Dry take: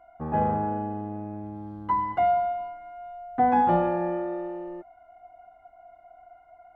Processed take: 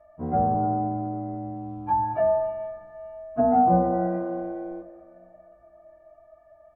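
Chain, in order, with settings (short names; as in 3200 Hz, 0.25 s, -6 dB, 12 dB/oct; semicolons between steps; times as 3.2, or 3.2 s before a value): inharmonic rescaling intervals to 91%; low shelf 260 Hz +6 dB; doubler 16 ms -8.5 dB; treble ducked by the level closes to 1200 Hz, closed at -19 dBFS; on a send: reverb RT60 2.4 s, pre-delay 0.122 s, DRR 14 dB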